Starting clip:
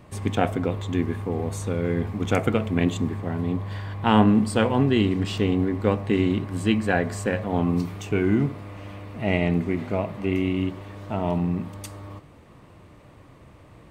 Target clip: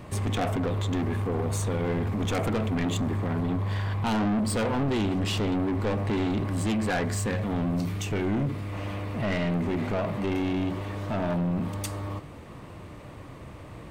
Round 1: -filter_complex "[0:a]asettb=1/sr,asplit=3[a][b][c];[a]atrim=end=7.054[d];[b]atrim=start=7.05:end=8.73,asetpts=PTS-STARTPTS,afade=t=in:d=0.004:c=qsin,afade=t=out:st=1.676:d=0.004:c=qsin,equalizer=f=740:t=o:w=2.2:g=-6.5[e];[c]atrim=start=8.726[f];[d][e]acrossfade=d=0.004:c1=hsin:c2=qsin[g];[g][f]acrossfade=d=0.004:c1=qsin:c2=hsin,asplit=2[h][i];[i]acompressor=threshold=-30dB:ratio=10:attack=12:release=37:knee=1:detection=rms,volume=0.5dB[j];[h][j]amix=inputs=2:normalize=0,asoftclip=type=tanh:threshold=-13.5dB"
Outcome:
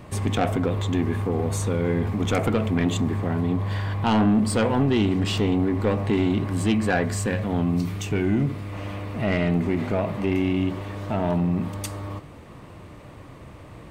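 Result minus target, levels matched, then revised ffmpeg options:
soft clip: distortion -7 dB
-filter_complex "[0:a]asettb=1/sr,asplit=3[a][b][c];[a]atrim=end=7.054[d];[b]atrim=start=7.05:end=8.73,asetpts=PTS-STARTPTS,afade=t=in:d=0.004:c=qsin,afade=t=out:st=1.676:d=0.004:c=qsin,equalizer=f=740:t=o:w=2.2:g=-6.5[e];[c]atrim=start=8.726[f];[d][e]acrossfade=d=0.004:c1=hsin:c2=qsin[g];[g][f]acrossfade=d=0.004:c1=qsin:c2=hsin,asplit=2[h][i];[i]acompressor=threshold=-30dB:ratio=10:attack=12:release=37:knee=1:detection=rms,volume=0.5dB[j];[h][j]amix=inputs=2:normalize=0,asoftclip=type=tanh:threshold=-23dB"

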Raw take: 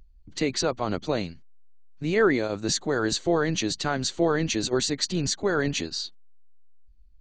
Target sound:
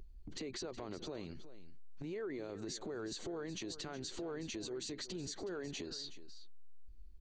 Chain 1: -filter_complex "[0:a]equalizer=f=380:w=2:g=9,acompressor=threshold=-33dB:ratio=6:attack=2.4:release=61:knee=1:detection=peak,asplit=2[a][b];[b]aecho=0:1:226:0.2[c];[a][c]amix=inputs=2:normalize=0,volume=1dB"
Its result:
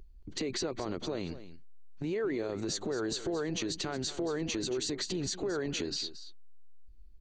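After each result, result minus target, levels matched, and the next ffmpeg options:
compressor: peak gain reduction -9 dB; echo 0.144 s early
-filter_complex "[0:a]equalizer=f=380:w=2:g=9,acompressor=threshold=-44dB:ratio=6:attack=2.4:release=61:knee=1:detection=peak,asplit=2[a][b];[b]aecho=0:1:226:0.2[c];[a][c]amix=inputs=2:normalize=0,volume=1dB"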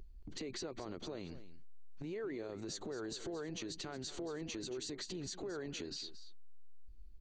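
echo 0.144 s early
-filter_complex "[0:a]equalizer=f=380:w=2:g=9,acompressor=threshold=-44dB:ratio=6:attack=2.4:release=61:knee=1:detection=peak,asplit=2[a][b];[b]aecho=0:1:370:0.2[c];[a][c]amix=inputs=2:normalize=0,volume=1dB"

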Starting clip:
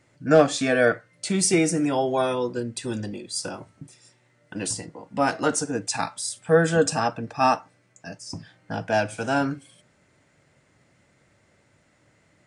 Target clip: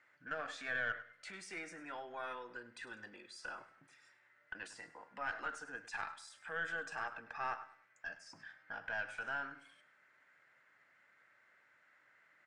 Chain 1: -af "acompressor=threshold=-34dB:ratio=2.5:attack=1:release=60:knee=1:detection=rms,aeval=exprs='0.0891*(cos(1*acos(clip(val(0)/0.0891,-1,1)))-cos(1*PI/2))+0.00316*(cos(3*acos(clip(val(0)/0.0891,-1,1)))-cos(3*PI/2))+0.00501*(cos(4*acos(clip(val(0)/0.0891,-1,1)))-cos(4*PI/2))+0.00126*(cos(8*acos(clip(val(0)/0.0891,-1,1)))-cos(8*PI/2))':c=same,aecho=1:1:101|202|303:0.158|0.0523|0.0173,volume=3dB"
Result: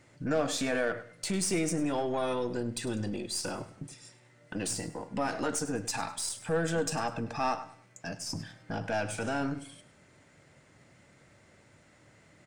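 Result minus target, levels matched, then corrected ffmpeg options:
2000 Hz band -9.5 dB
-af "acompressor=threshold=-34dB:ratio=2.5:attack=1:release=60:knee=1:detection=rms,bandpass=f=1.6k:t=q:w=2.7:csg=0,aeval=exprs='0.0891*(cos(1*acos(clip(val(0)/0.0891,-1,1)))-cos(1*PI/2))+0.00316*(cos(3*acos(clip(val(0)/0.0891,-1,1)))-cos(3*PI/2))+0.00501*(cos(4*acos(clip(val(0)/0.0891,-1,1)))-cos(4*PI/2))+0.00126*(cos(8*acos(clip(val(0)/0.0891,-1,1)))-cos(8*PI/2))':c=same,aecho=1:1:101|202|303:0.158|0.0523|0.0173,volume=3dB"

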